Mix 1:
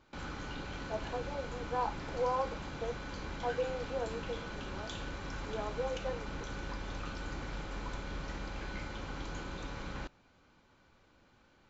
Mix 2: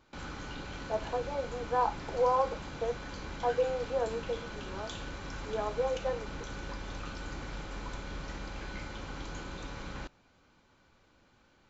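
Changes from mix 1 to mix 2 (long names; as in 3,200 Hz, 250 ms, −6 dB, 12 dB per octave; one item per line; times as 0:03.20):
speech +5.5 dB
master: add high-shelf EQ 6,300 Hz +5 dB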